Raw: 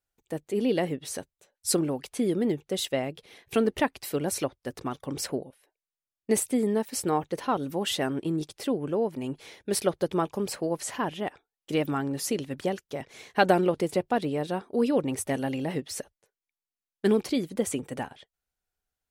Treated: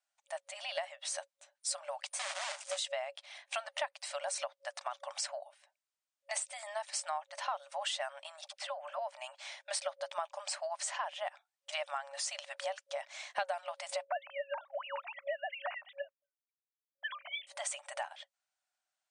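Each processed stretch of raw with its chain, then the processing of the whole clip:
2.13–2.79 switching spikes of -32.5 dBFS + bell 3700 Hz -12 dB 0.76 oct + companded quantiser 4-bit
8.41–8.99 LPF 3600 Hz 6 dB/oct + dispersion lows, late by 45 ms, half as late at 810 Hz
14.05–17.47 sine-wave speech + gate -59 dBFS, range -19 dB
whole clip: FFT band-pass 550–9500 Hz; compressor 4:1, threshold -37 dBFS; gain +2 dB

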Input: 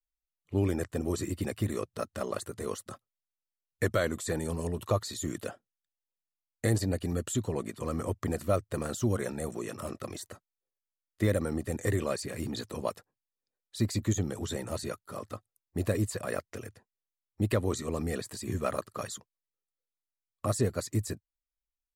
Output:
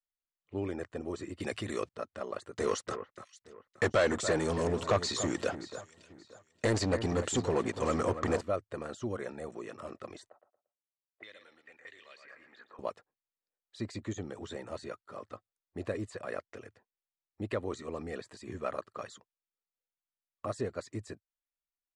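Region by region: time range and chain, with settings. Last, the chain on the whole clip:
1.4–1.89 high shelf 2500 Hz +10 dB + fast leveller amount 50%
2.55–8.41 bell 5800 Hz +8 dB 0.95 oct + sample leveller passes 3 + echo with dull and thin repeats by turns 0.289 s, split 2100 Hz, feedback 51%, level -10.5 dB
10.29–12.79 feedback echo 0.115 s, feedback 29%, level -9 dB + auto-wah 640–3300 Hz, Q 2.6, up, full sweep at -26 dBFS + mismatched tape noise reduction decoder only
whole clip: LPF 8200 Hz 24 dB/oct; tone controls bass -9 dB, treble -10 dB; gain -3.5 dB

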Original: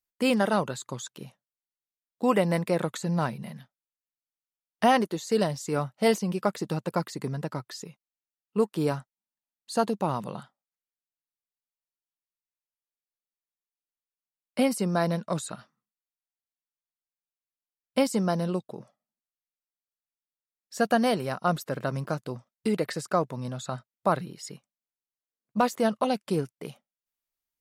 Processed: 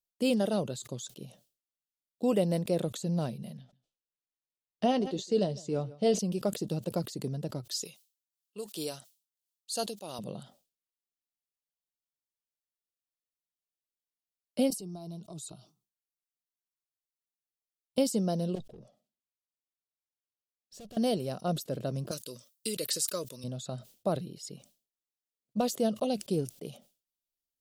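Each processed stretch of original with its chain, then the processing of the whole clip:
3.57–6.19 air absorption 93 m + doubler 16 ms -14 dB + echo 0.155 s -22.5 dB
7.68–10.19 HPF 640 Hz 6 dB/oct + high shelf 2000 Hz +11.5 dB + tremolo triangle 2.9 Hz, depth 70%
14.7–17.98 compressor 4:1, threshold -34 dBFS + fixed phaser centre 350 Hz, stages 8
18.55–20.97 high shelf 6700 Hz -9.5 dB + tube stage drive 42 dB, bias 0.35
22.11–23.44 Butterworth band-stop 760 Hz, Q 2.3 + tilt +4.5 dB/oct
whole clip: band shelf 1400 Hz -13.5 dB; sustainer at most 150 dB/s; gain -3 dB

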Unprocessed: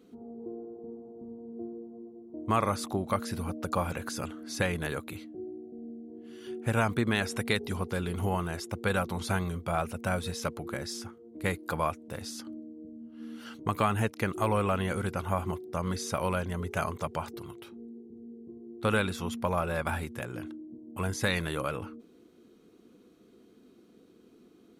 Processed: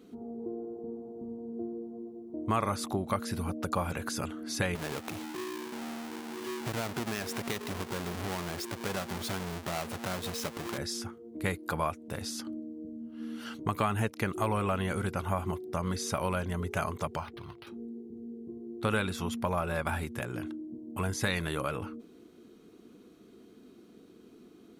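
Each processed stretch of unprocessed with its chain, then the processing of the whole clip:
4.75–10.78 half-waves squared off + HPF 190 Hz 6 dB/oct + compressor 2:1, threshold -38 dBFS
17.17–17.67 bell 320 Hz -8.5 dB 2.1 oct + decimation joined by straight lines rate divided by 6×
whole clip: notch 510 Hz, Q 17; compressor 1.5:1, threshold -38 dBFS; gain +3.5 dB

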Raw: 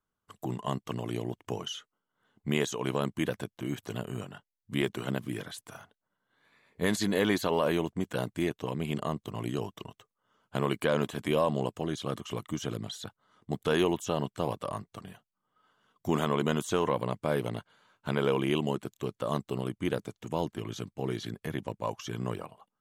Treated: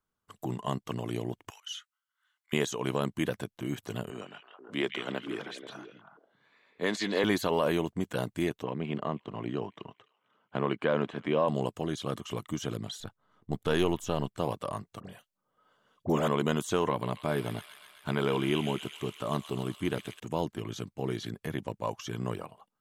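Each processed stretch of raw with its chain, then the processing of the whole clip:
1.5–2.53 HPF 1300 Hz 24 dB/oct + auto swell 0.119 s
4.1–7.24 three-band isolator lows -17 dB, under 220 Hz, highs -18 dB, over 6800 Hz + delay with a stepping band-pass 0.162 s, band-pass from 2700 Hz, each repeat -1.4 oct, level -2 dB
8.63–11.48 BPF 140–2700 Hz + thin delay 0.262 s, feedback 50%, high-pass 1600 Hz, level -21 dB
13–14.38 half-wave gain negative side -3 dB + low shelf 69 Hz +8 dB + mismatched tape noise reduction decoder only
15–16.28 bell 550 Hz +8 dB 0.42 oct + dispersion highs, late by 50 ms, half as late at 1500 Hz
16.9–20.2 notch 510 Hz, Q 5.8 + thin delay 0.128 s, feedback 74%, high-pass 2600 Hz, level -4 dB
whole clip: dry

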